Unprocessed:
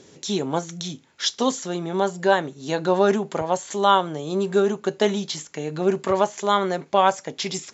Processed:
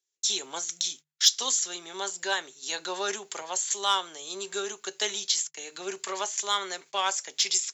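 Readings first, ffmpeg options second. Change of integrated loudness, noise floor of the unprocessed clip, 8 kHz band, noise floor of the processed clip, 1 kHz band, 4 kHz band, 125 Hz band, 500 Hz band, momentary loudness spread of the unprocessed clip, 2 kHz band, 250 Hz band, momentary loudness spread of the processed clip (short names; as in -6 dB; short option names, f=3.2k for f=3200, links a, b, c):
-5.5 dB, -54 dBFS, n/a, -80 dBFS, -10.5 dB, +2.5 dB, under -25 dB, -15.5 dB, 9 LU, -4.0 dB, -20.5 dB, 10 LU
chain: -filter_complex "[0:a]agate=range=-35dB:threshold=-39dB:ratio=16:detection=peak,equalizer=f=380:w=2.6:g=7.5,bandreject=f=50:t=h:w=6,bandreject=f=100:t=h:w=6,bandreject=f=150:t=h:w=6,acrossover=split=230|800[a][b][c];[c]acontrast=53[d];[a][b][d]amix=inputs=3:normalize=0,aderivative,volume=2.5dB"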